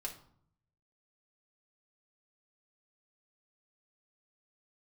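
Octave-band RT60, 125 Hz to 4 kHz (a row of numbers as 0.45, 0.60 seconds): 1.1, 0.85, 0.60, 0.60, 0.45, 0.40 seconds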